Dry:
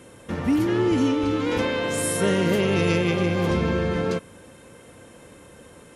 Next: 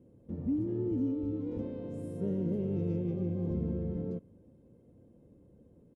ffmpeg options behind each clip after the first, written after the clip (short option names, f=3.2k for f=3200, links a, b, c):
-af "firequalizer=gain_entry='entry(230,0);entry(980,-22);entry(1500,-30)':delay=0.05:min_phase=1,volume=-8.5dB"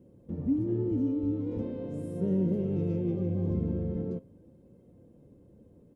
-af "flanger=delay=5.3:depth=5.1:regen=77:speed=0.42:shape=sinusoidal,volume=7.5dB"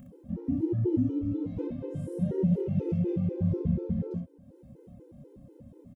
-filter_complex "[0:a]acompressor=mode=upward:threshold=-44dB:ratio=2.5,asplit=2[a][b];[b]aecho=0:1:28|63:0.668|0.631[c];[a][c]amix=inputs=2:normalize=0,afftfilt=real='re*gt(sin(2*PI*4.1*pts/sr)*(1-2*mod(floor(b*sr/1024/260),2)),0)':imag='im*gt(sin(2*PI*4.1*pts/sr)*(1-2*mod(floor(b*sr/1024/260),2)),0)':win_size=1024:overlap=0.75,volume=1.5dB"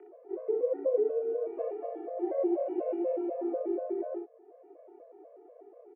-af "highpass=f=190:t=q:w=0.5412,highpass=f=190:t=q:w=1.307,lowpass=f=2.2k:t=q:w=0.5176,lowpass=f=2.2k:t=q:w=0.7071,lowpass=f=2.2k:t=q:w=1.932,afreqshift=170"